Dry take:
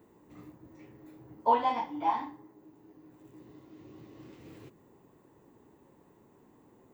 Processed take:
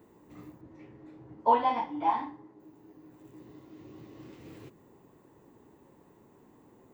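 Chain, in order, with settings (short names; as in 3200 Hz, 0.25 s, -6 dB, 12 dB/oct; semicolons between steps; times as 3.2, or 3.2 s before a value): 0.61–2.6 air absorption 110 m; gain +2 dB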